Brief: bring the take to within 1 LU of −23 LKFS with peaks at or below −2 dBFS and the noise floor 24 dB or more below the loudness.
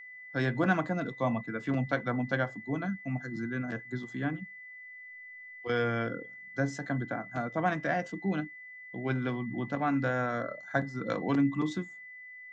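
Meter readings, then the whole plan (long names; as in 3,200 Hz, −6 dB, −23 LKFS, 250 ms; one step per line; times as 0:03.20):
interfering tone 2,000 Hz; level of the tone −45 dBFS; integrated loudness −32.5 LKFS; sample peak −13.5 dBFS; target loudness −23.0 LKFS
→ notch filter 2,000 Hz, Q 30
level +9.5 dB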